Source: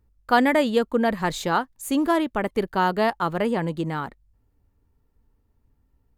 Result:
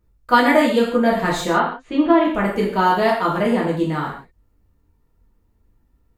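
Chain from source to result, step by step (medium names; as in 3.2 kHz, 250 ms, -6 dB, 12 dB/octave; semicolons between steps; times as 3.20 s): 1.41–2.25 s: low-pass 3.4 kHz 24 dB/octave; gated-style reverb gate 200 ms falling, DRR -5 dB; trim -1 dB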